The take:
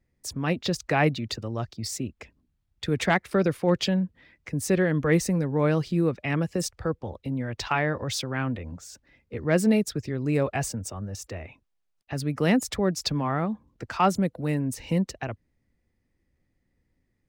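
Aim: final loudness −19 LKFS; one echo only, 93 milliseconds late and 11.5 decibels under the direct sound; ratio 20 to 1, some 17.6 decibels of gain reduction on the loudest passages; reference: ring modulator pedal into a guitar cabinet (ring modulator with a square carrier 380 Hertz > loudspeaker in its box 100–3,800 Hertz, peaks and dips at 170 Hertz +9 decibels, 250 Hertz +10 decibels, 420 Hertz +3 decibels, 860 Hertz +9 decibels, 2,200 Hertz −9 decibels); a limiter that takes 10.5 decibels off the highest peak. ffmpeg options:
ffmpeg -i in.wav -af "acompressor=threshold=-34dB:ratio=20,alimiter=level_in=6dB:limit=-24dB:level=0:latency=1,volume=-6dB,aecho=1:1:93:0.266,aeval=exprs='val(0)*sgn(sin(2*PI*380*n/s))':channel_layout=same,highpass=100,equalizer=frequency=170:width_type=q:width=4:gain=9,equalizer=frequency=250:width_type=q:width=4:gain=10,equalizer=frequency=420:width_type=q:width=4:gain=3,equalizer=frequency=860:width_type=q:width=4:gain=9,equalizer=frequency=2200:width_type=q:width=4:gain=-9,lowpass=frequency=3800:width=0.5412,lowpass=frequency=3800:width=1.3066,volume=18dB" out.wav

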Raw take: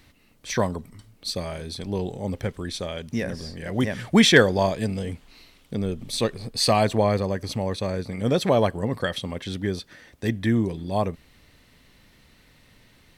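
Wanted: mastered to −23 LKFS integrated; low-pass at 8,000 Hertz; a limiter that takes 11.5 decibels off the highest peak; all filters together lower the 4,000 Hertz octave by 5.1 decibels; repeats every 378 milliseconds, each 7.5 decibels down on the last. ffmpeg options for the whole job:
ffmpeg -i in.wav -af "lowpass=8000,equalizer=frequency=4000:width_type=o:gain=-6,alimiter=limit=-14dB:level=0:latency=1,aecho=1:1:378|756|1134|1512|1890:0.422|0.177|0.0744|0.0312|0.0131,volume=4.5dB" out.wav

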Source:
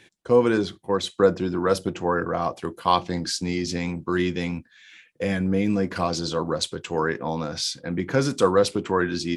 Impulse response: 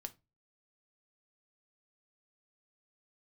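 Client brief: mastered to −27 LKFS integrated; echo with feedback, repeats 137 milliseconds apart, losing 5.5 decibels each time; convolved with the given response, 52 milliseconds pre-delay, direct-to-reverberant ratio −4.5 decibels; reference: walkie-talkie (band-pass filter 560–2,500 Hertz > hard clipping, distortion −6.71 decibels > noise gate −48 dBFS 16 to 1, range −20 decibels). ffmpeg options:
-filter_complex "[0:a]aecho=1:1:137|274|411|548|685|822|959:0.531|0.281|0.149|0.079|0.0419|0.0222|0.0118,asplit=2[link_01][link_02];[1:a]atrim=start_sample=2205,adelay=52[link_03];[link_02][link_03]afir=irnorm=-1:irlink=0,volume=8.5dB[link_04];[link_01][link_04]amix=inputs=2:normalize=0,highpass=560,lowpass=2500,asoftclip=type=hard:threshold=-21dB,agate=range=-20dB:threshold=-48dB:ratio=16,volume=-1.5dB"

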